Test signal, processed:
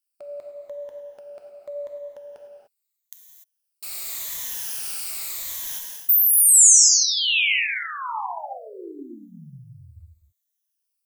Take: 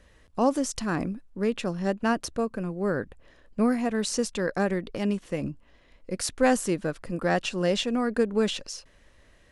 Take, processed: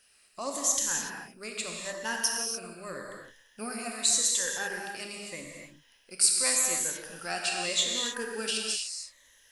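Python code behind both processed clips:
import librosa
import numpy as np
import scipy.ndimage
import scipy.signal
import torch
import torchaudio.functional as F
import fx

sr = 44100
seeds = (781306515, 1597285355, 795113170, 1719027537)

y = fx.spec_ripple(x, sr, per_octave=1.1, drift_hz=-0.83, depth_db=11)
y = F.preemphasis(torch.from_numpy(y), 0.97).numpy()
y = fx.rev_gated(y, sr, seeds[0], gate_ms=320, shape='flat', drr_db=-0.5)
y = y * librosa.db_to_amplitude(6.0)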